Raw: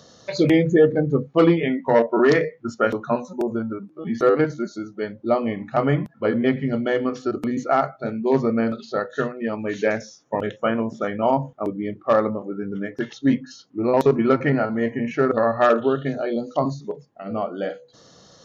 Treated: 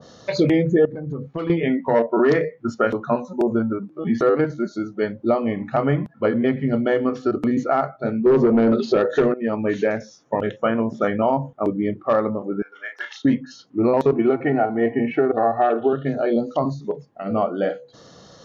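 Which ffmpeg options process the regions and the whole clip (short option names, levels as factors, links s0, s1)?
-filter_complex "[0:a]asettb=1/sr,asplit=3[s0][s1][s2];[s0]atrim=end=0.854[s3];[s1]atrim=start=0.85:end=1.5,asetpts=PTS-STARTPTS,afade=t=in:d=0.004:c=qsin,afade=t=out:st=0.646:d=0.004:c=qsin,acompressor=threshold=0.0562:ratio=10:attack=3.2:release=140:knee=1:detection=peak,equalizer=f=440:t=o:w=2.2:g=-4[s4];[s2]atrim=start=1.496[s5];[s3][s4]acrossfade=d=0.004:c1=hsin:c2=qsin[s6];[s6][s5]acrossfade=d=0.004:c1=qsin:c2=hsin,asettb=1/sr,asplit=3[s7][s8][s9];[s7]atrim=end=8.264[s10];[s8]atrim=start=8.26:end=9.34,asetpts=PTS-STARTPTS,afade=t=in:d=0.004:c=qsin,afade=t=out:st=1.076:d=0.004:c=qsin,acompressor=threshold=0.0501:ratio=2:attack=3.2:release=140:knee=1:detection=peak,aeval=exprs='0.211*sin(PI/2*2.51*val(0)/0.211)':c=same,equalizer=f=370:w=1.6:g=10.5[s11];[s9]atrim=start=9.336[s12];[s10][s11]acrossfade=d=0.004:c1=hsin:c2=qsin[s13];[s13][s12]acrossfade=d=0.004:c1=qsin:c2=hsin,asettb=1/sr,asplit=3[s14][s15][s16];[s14]atrim=end=12.624[s17];[s15]atrim=start=12.62:end=13.25,asetpts=PTS-STARTPTS,afade=t=in:d=0.004:c=qsin,afade=t=out:st=0.626:d=0.004:c=qsin,highpass=f=870:w=0.5412,highpass=f=870:w=1.3066,asplit=2[s18][s19];[s19]adelay=34,volume=0.562[s20];[s18][s20]amix=inputs=2:normalize=0,atrim=end_sample=27783[s21];[s16]atrim=start=13.246[s22];[s17][s21]acrossfade=d=0.004:c1=hsin:c2=qsin[s23];[s23][s22]acrossfade=d=0.004:c1=qsin:c2=hsin,asettb=1/sr,asplit=3[s24][s25][s26];[s24]atrim=end=14.124[s27];[s25]atrim=start=14.12:end=15.93,asetpts=PTS-STARTPTS,afade=t=in:d=0.004:c=qsin,afade=t=out:st=1.806:d=0.004:c=qsin,highpass=f=100:w=0.5412,highpass=f=100:w=1.3066,equalizer=f=120:t=q:w=4:g=-3,equalizer=f=760:t=q:w=4:g=8,equalizer=f=1100:t=q:w=4:g=-6,equalizer=f=1600:t=q:w=4:g=-3,lowpass=f=3700:w=0.5412,lowpass=f=3700:w=1.3066,aecho=1:1:2.7:0.51,atrim=end_sample=79821[s28];[s26]atrim=start=15.926[s29];[s27][s28]acrossfade=d=0.004:c1=hsin:c2=qsin[s30];[s30][s29]acrossfade=d=0.004:c1=qsin:c2=hsin,lowpass=f=3900:p=1,alimiter=limit=0.2:level=0:latency=1:release=406,adynamicequalizer=threshold=0.0112:dfrequency=1600:dqfactor=0.7:tfrequency=1600:tqfactor=0.7:attack=5:release=100:ratio=0.375:range=2:mode=cutabove:tftype=highshelf,volume=1.78"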